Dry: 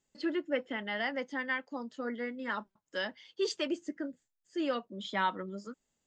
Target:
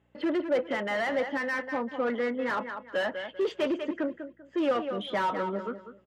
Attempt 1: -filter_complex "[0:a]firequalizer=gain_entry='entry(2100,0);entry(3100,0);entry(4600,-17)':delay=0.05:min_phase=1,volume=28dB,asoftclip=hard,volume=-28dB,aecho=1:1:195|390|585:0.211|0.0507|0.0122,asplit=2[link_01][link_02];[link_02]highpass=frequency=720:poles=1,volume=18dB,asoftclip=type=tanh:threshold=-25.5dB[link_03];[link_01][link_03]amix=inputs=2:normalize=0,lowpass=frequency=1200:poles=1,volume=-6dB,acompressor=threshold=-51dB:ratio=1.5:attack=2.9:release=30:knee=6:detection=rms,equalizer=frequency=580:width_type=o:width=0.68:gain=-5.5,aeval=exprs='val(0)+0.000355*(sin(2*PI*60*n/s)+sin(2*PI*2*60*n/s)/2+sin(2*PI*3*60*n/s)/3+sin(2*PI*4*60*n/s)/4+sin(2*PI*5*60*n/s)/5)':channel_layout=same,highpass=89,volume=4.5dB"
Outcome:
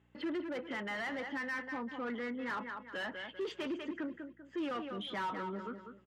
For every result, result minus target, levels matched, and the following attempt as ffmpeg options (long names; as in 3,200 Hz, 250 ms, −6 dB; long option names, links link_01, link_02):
downward compressor: peak gain reduction +7.5 dB; 500 Hz band −3.5 dB
-filter_complex "[0:a]firequalizer=gain_entry='entry(2100,0);entry(3100,0);entry(4600,-17)':delay=0.05:min_phase=1,volume=28dB,asoftclip=hard,volume=-28dB,aecho=1:1:195|390|585:0.211|0.0507|0.0122,asplit=2[link_01][link_02];[link_02]highpass=frequency=720:poles=1,volume=18dB,asoftclip=type=tanh:threshold=-25.5dB[link_03];[link_01][link_03]amix=inputs=2:normalize=0,lowpass=frequency=1200:poles=1,volume=-6dB,equalizer=frequency=580:width_type=o:width=0.68:gain=-5.5,aeval=exprs='val(0)+0.000355*(sin(2*PI*60*n/s)+sin(2*PI*2*60*n/s)/2+sin(2*PI*3*60*n/s)/3+sin(2*PI*4*60*n/s)/4+sin(2*PI*5*60*n/s)/5)':channel_layout=same,highpass=89,volume=4.5dB"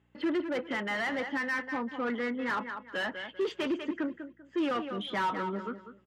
500 Hz band −3.5 dB
-filter_complex "[0:a]firequalizer=gain_entry='entry(2100,0);entry(3100,0);entry(4600,-17)':delay=0.05:min_phase=1,volume=28dB,asoftclip=hard,volume=-28dB,aecho=1:1:195|390|585:0.211|0.0507|0.0122,asplit=2[link_01][link_02];[link_02]highpass=frequency=720:poles=1,volume=18dB,asoftclip=type=tanh:threshold=-25.5dB[link_03];[link_01][link_03]amix=inputs=2:normalize=0,lowpass=frequency=1200:poles=1,volume=-6dB,equalizer=frequency=580:width_type=o:width=0.68:gain=4,aeval=exprs='val(0)+0.000355*(sin(2*PI*60*n/s)+sin(2*PI*2*60*n/s)/2+sin(2*PI*3*60*n/s)/3+sin(2*PI*4*60*n/s)/4+sin(2*PI*5*60*n/s)/5)':channel_layout=same,highpass=89,volume=4.5dB"